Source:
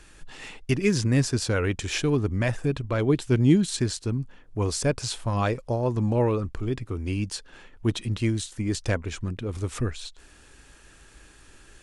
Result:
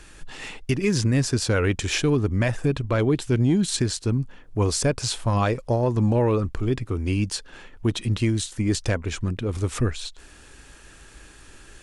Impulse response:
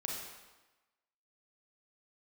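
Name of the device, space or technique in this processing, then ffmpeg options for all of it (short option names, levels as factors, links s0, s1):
soft clipper into limiter: -af "asoftclip=type=tanh:threshold=0.355,alimiter=limit=0.133:level=0:latency=1:release=168,volume=1.68"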